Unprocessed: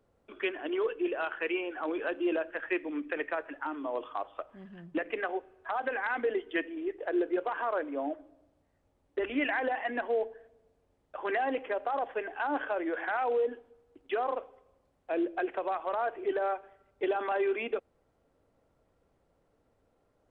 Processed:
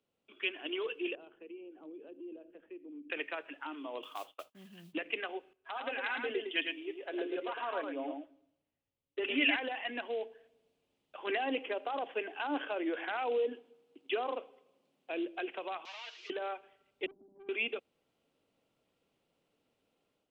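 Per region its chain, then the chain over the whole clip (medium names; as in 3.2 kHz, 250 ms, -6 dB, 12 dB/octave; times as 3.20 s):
1.15–3.10 s: FFT filter 400 Hz 0 dB, 830 Hz -15 dB, 1.6 kHz -25 dB + compression 2.5:1, threshold -42 dBFS
4.02–4.93 s: gate -54 dBFS, range -29 dB + modulation noise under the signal 22 dB
5.53–9.56 s: comb 7.3 ms, depth 38% + delay 108 ms -4.5 dB + three bands expanded up and down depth 40%
11.27–15.11 s: high-pass 220 Hz + bass shelf 480 Hz +9 dB
15.85–16.30 s: one-bit delta coder 32 kbps, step -48 dBFS + high-pass 1.4 kHz + comb 6.4 ms, depth 69%
17.06–17.49 s: send-on-delta sampling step -47 dBFS + inverse Chebyshev low-pass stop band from 950 Hz, stop band 60 dB + valve stage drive 43 dB, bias 0.6
whole clip: three-band isolator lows -21 dB, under 160 Hz, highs -13 dB, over 3 kHz; level rider gain up to 7 dB; FFT filter 120 Hz 0 dB, 600 Hz -8 dB, 1.8 kHz -5 dB, 2.8 kHz +12 dB; trim -7.5 dB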